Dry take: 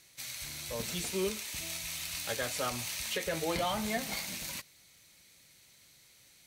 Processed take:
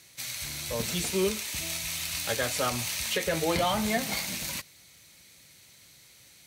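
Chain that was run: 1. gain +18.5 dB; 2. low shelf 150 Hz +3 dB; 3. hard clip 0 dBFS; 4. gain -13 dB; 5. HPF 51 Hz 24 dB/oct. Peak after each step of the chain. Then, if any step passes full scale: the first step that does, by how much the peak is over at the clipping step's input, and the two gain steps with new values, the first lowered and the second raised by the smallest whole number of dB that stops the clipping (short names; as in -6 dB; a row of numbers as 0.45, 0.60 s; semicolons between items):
-1.5, -1.5, -1.5, -14.5, -15.0 dBFS; no overload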